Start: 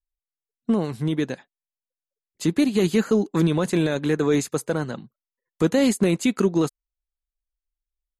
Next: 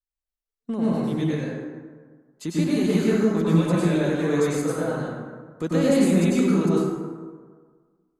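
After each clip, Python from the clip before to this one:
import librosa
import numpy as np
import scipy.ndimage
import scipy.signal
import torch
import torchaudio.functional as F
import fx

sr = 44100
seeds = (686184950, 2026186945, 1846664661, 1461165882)

y = fx.rev_plate(x, sr, seeds[0], rt60_s=1.6, hf_ratio=0.45, predelay_ms=85, drr_db=-7.5)
y = y * librosa.db_to_amplitude(-8.5)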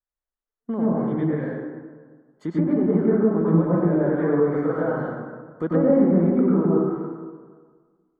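y = fx.env_lowpass_down(x, sr, base_hz=1100.0, full_db=-17.5)
y = scipy.signal.savgol_filter(y, 41, 4, mode='constant')
y = fx.low_shelf(y, sr, hz=200.0, db=-6.0)
y = y * librosa.db_to_amplitude(3.5)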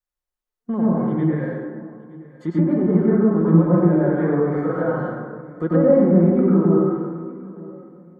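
y = x + 0.35 * np.pad(x, (int(5.6 * sr / 1000.0), 0))[:len(x)]
y = fx.echo_feedback(y, sr, ms=919, feedback_pct=29, wet_db=-20.5)
y = fx.hpss(y, sr, part='harmonic', gain_db=4)
y = y * librosa.db_to_amplitude(-1.0)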